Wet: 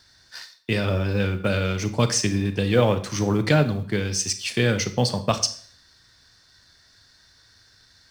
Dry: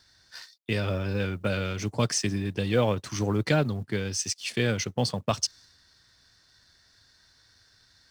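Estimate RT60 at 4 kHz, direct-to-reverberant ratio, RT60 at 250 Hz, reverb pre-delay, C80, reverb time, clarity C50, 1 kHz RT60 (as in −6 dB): 0.45 s, 10.0 dB, 0.50 s, 28 ms, 16.5 dB, 0.50 s, 13.0 dB, 0.50 s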